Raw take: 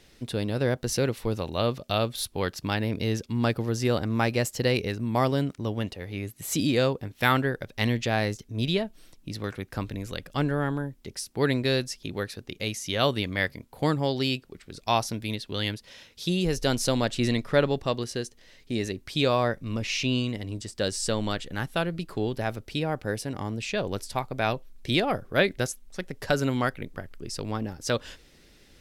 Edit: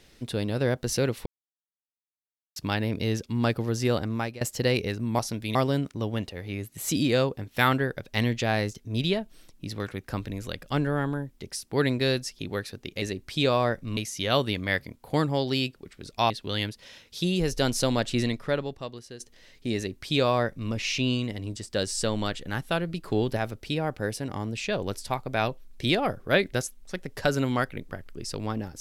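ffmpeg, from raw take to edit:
ffmpeg -i in.wav -filter_complex "[0:a]asplit=12[link_01][link_02][link_03][link_04][link_05][link_06][link_07][link_08][link_09][link_10][link_11][link_12];[link_01]atrim=end=1.26,asetpts=PTS-STARTPTS,afade=type=out:start_time=1.256:duration=0.004:curve=hsin[link_13];[link_02]atrim=start=1.26:end=2.56,asetpts=PTS-STARTPTS,volume=0[link_14];[link_03]atrim=start=2.56:end=4.41,asetpts=PTS-STARTPTS,afade=type=in:duration=0.004:curve=hsin,afade=type=out:start_time=1.29:duration=0.56:curve=qsin:silence=0.0841395[link_15];[link_04]atrim=start=4.41:end=5.192,asetpts=PTS-STARTPTS,afade=type=in:duration=0.004:curve=hsin:silence=0.0841395[link_16];[link_05]atrim=start=14.988:end=15.352[link_17];[link_06]atrim=start=5.188:end=12.662[link_18];[link_07]atrim=start=18.808:end=19.762[link_19];[link_08]atrim=start=12.658:end=14.992[link_20];[link_09]atrim=start=15.348:end=18.25,asetpts=PTS-STARTPTS,afade=type=out:start_time=1.842:duration=1.06:curve=qua:silence=0.251189[link_21];[link_10]atrim=start=18.25:end=22.132,asetpts=PTS-STARTPTS,afade=type=in:duration=0.004:curve=hsin:silence=0.251189[link_22];[link_11]atrim=start=22.128:end=22.422,asetpts=PTS-STARTPTS,volume=3dB[link_23];[link_12]atrim=start=22.418[link_24];[link_13][link_14][link_15][link_16]concat=n=4:v=0:a=1[link_25];[link_25][link_17]acrossfade=duration=0.004:curve1=hsin:curve2=hsin[link_26];[link_26][link_18]acrossfade=duration=0.004:curve1=hsin:curve2=hsin[link_27];[link_27][link_19]acrossfade=duration=0.004:curve1=hsin:curve2=hsin[link_28];[link_28][link_20]acrossfade=duration=0.004:curve1=hsin:curve2=hsin[link_29];[link_21][link_22]concat=n=2:v=0:a=1[link_30];[link_29][link_30]acrossfade=duration=0.004:curve1=hsin:curve2=hsin[link_31];[link_31][link_23]acrossfade=duration=0.004:curve1=hsin:curve2=hsin[link_32];[link_32][link_24]acrossfade=duration=0.004:curve1=hsin:curve2=hsin" out.wav

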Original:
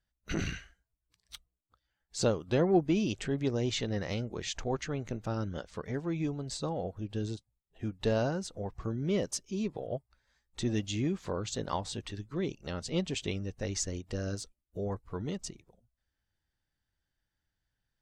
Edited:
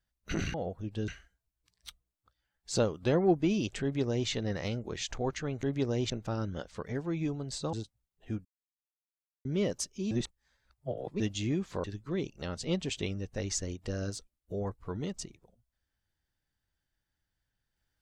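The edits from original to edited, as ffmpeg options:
ffmpeg -i in.wav -filter_complex "[0:a]asplit=11[link_01][link_02][link_03][link_04][link_05][link_06][link_07][link_08][link_09][link_10][link_11];[link_01]atrim=end=0.542[link_12];[link_02]atrim=start=6.718:end=7.262[link_13];[link_03]atrim=start=0.538:end=5.092[link_14];[link_04]atrim=start=3.278:end=3.752[link_15];[link_05]atrim=start=5.088:end=6.722[link_16];[link_06]atrim=start=7.258:end=7.98,asetpts=PTS-STARTPTS,afade=type=out:start_time=0.718:duration=0.004:curve=hsin[link_17];[link_07]atrim=start=7.98:end=8.98,asetpts=PTS-STARTPTS,volume=0[link_18];[link_08]atrim=start=8.98:end=9.642,asetpts=PTS-STARTPTS,afade=type=in:duration=0.004:curve=hsin[link_19];[link_09]atrim=start=9.638:end=10.732,asetpts=PTS-STARTPTS,areverse[link_20];[link_10]atrim=start=10.728:end=11.372[link_21];[link_11]atrim=start=12.088[link_22];[link_12][link_13]acrossfade=duration=0.004:curve1=hsin:curve2=hsin[link_23];[link_23][link_14]acrossfade=duration=0.004:curve1=hsin:curve2=hsin[link_24];[link_24][link_15]acrossfade=duration=0.004:curve1=hsin:curve2=hsin[link_25];[link_25][link_16]acrossfade=duration=0.004:curve1=hsin:curve2=hsin[link_26];[link_17][link_18][link_19]concat=n=3:v=0:a=1[link_27];[link_26][link_27]acrossfade=duration=0.004:curve1=hsin:curve2=hsin[link_28];[link_28][link_20]acrossfade=duration=0.004:curve1=hsin:curve2=hsin[link_29];[link_29][link_21]acrossfade=duration=0.004:curve1=hsin:curve2=hsin[link_30];[link_30][link_22]acrossfade=duration=0.004:curve1=hsin:curve2=hsin" out.wav

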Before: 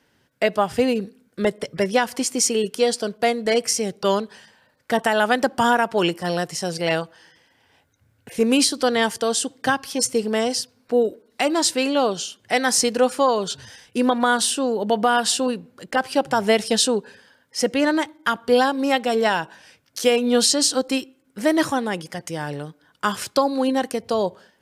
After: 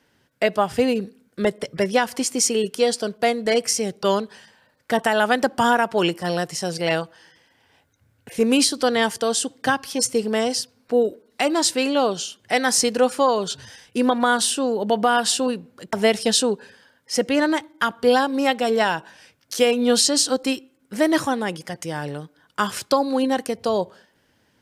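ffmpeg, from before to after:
ffmpeg -i in.wav -filter_complex "[0:a]asplit=2[link_01][link_02];[link_01]atrim=end=15.932[link_03];[link_02]atrim=start=16.378[link_04];[link_03][link_04]acrossfade=duration=0.004:curve1=hsin:curve2=hsin" out.wav

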